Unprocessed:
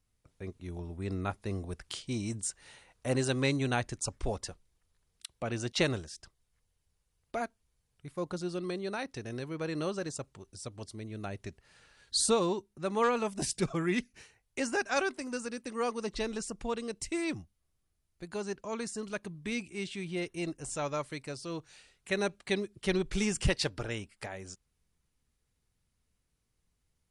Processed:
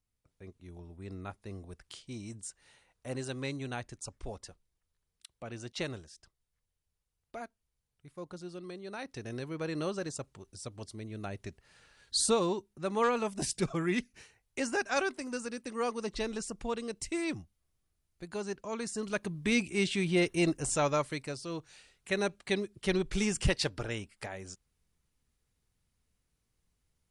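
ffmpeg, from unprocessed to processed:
-af "volume=8dB,afade=t=in:st=8.84:d=0.43:silence=0.421697,afade=t=in:st=18.8:d=0.9:silence=0.375837,afade=t=out:st=20.48:d=0.95:silence=0.398107"

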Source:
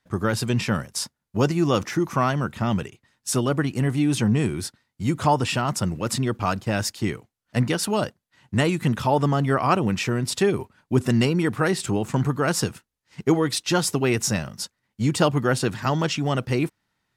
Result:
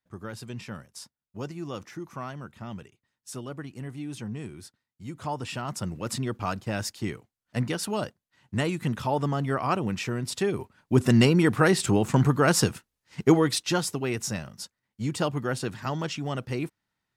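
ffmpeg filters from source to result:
-af "volume=1.5dB,afade=t=in:st=5.12:d=0.97:silence=0.354813,afade=t=in:st=10.49:d=0.73:silence=0.421697,afade=t=out:st=13.22:d=0.71:silence=0.354813"

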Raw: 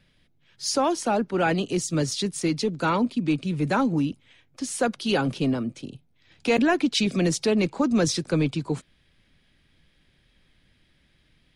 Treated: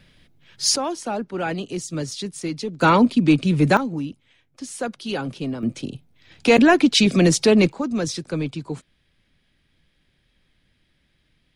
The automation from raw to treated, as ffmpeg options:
-af "asetnsamples=n=441:p=0,asendcmd='0.76 volume volume -3dB;2.81 volume volume 8dB;3.77 volume volume -3.5dB;5.63 volume volume 7dB;7.72 volume volume -2.5dB',volume=8.5dB"

